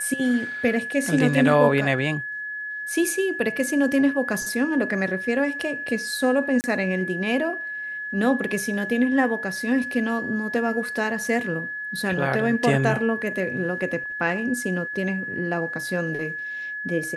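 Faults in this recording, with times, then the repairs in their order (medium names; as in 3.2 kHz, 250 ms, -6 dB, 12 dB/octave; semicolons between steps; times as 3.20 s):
whine 1.7 kHz -29 dBFS
6.61–6.64 s: dropout 29 ms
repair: band-stop 1.7 kHz, Q 30; interpolate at 6.61 s, 29 ms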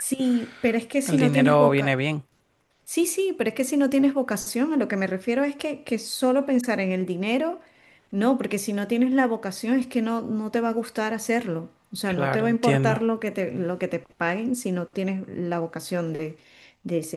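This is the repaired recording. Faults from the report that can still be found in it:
nothing left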